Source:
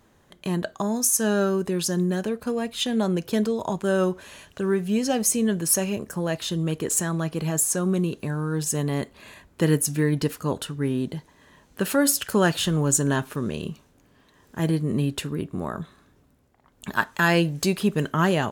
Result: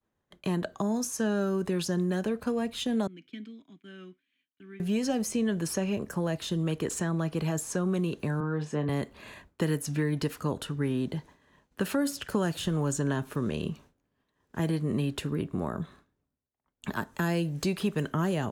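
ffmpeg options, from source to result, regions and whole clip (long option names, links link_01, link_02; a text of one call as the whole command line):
ffmpeg -i in.wav -filter_complex "[0:a]asettb=1/sr,asplit=3[link_01][link_02][link_03];[link_01]atrim=end=3.074[link_04];[link_02]atrim=start=3.07:end=4.8,asetpts=PTS-STARTPTS,afade=type=in:duration=0.004:curve=qsin,afade=type=out:start_time=1.726:duration=0.004:curve=qsin,asplit=3[link_05][link_06][link_07];[link_05]bandpass=frequency=270:width_type=q:width=8,volume=0dB[link_08];[link_06]bandpass=frequency=2290:width_type=q:width=8,volume=-6dB[link_09];[link_07]bandpass=frequency=3010:width_type=q:width=8,volume=-9dB[link_10];[link_08][link_09][link_10]amix=inputs=3:normalize=0,lowshelf=frequency=680:width_type=q:width=3:gain=-6.5[link_11];[link_03]atrim=start=4.796[link_12];[link_04][link_11]acrossfade=duration=0.004:curve1=hsin:curve2=qsin[link_13];[link_13][link_12]acrossfade=duration=0.004:curve1=qsin:curve2=hsin,asettb=1/sr,asplit=3[link_14][link_15][link_16];[link_14]atrim=end=8.404[link_17];[link_15]atrim=start=8.4:end=8.89,asetpts=PTS-STARTPTS,afade=type=in:duration=0.004:curve=qsin,afade=type=out:start_time=0.486:duration=0.004:curve=qsin,highpass=180,lowpass=2500,asplit=2[link_18][link_19];[link_19]adelay=27,volume=-9dB[link_20];[link_18][link_20]amix=inputs=2:normalize=0,atrim=end_sample=21609[link_21];[link_16]atrim=start=8.886[link_22];[link_17][link_21]acrossfade=duration=0.004:curve1=hsin:curve2=qsin[link_23];[link_23][link_22]acrossfade=duration=0.004:curve1=qsin:curve2=hsin,agate=range=-33dB:threshold=-46dB:ratio=3:detection=peak,highshelf=frequency=4700:gain=-7,acrossover=split=290|580|6000[link_24][link_25][link_26][link_27];[link_24]acompressor=threshold=-29dB:ratio=4[link_28];[link_25]acompressor=threshold=-35dB:ratio=4[link_29];[link_26]acompressor=threshold=-36dB:ratio=4[link_30];[link_27]acompressor=threshold=-42dB:ratio=4[link_31];[link_28][link_29][link_30][link_31]amix=inputs=4:normalize=0" out.wav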